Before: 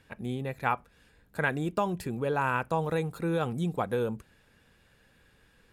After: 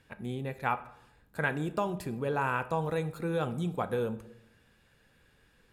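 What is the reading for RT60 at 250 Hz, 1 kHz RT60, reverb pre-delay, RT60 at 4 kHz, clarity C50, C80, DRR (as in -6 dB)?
0.90 s, 0.75 s, 7 ms, 0.50 s, 15.5 dB, 18.0 dB, 11.0 dB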